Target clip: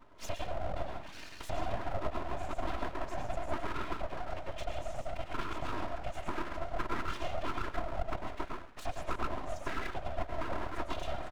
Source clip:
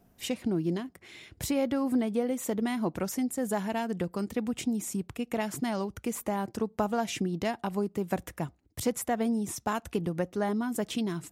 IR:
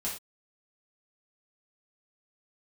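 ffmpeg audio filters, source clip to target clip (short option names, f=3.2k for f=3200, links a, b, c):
-filter_complex "[0:a]asplit=2[a][b];[1:a]atrim=start_sample=2205,adelay=97[c];[b][c]afir=irnorm=-1:irlink=0,volume=-5.5dB[d];[a][d]amix=inputs=2:normalize=0,afftfilt=real='hypot(re,im)*cos(PI*b)':imag='0':win_size=512:overlap=0.75,highpass=120,lowpass=2.5k,asplit=5[e][f][g][h][i];[f]adelay=134,afreqshift=63,volume=-18.5dB[j];[g]adelay=268,afreqshift=126,volume=-24.9dB[k];[h]adelay=402,afreqshift=189,volume=-31.3dB[l];[i]adelay=536,afreqshift=252,volume=-37.6dB[m];[e][j][k][l][m]amix=inputs=5:normalize=0,acompressor=threshold=-51dB:ratio=2,afftfilt=real='hypot(re,im)*cos(2*PI*random(0))':imag='hypot(re,im)*sin(2*PI*random(1))':win_size=512:overlap=0.75,bandreject=f=50:t=h:w=6,bandreject=f=100:t=h:w=6,bandreject=f=150:t=h:w=6,bandreject=f=200:t=h:w=6,bandreject=f=250:t=h:w=6,bandreject=f=300:t=h:w=6,aecho=1:1:3.2:0.95,aeval=exprs='abs(val(0))':c=same,volume=14dB"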